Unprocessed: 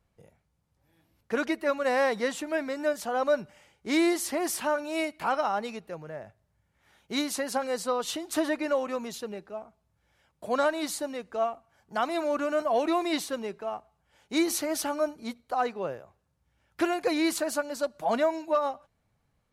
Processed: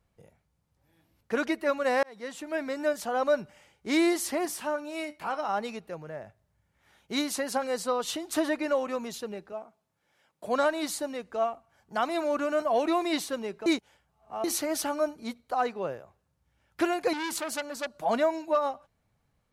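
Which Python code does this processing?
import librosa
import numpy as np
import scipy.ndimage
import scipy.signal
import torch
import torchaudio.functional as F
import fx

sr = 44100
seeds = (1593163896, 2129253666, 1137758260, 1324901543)

y = fx.comb_fb(x, sr, f0_hz=99.0, decay_s=0.22, harmonics='all', damping=0.0, mix_pct=60, at=(4.45, 5.49))
y = fx.highpass(y, sr, hz=200.0, slope=12, at=(9.52, 10.45))
y = fx.transformer_sat(y, sr, knee_hz=2700.0, at=(17.13, 17.99))
y = fx.edit(y, sr, fx.fade_in_span(start_s=2.03, length_s=0.68),
    fx.reverse_span(start_s=13.66, length_s=0.78), tone=tone)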